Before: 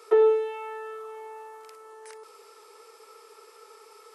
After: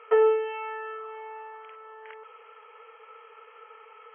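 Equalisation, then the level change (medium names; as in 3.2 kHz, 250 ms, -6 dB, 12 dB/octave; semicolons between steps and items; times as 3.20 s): brick-wall FIR band-pass 420–3300 Hz; peaking EQ 2.1 kHz +5.5 dB 2 oct; 0.0 dB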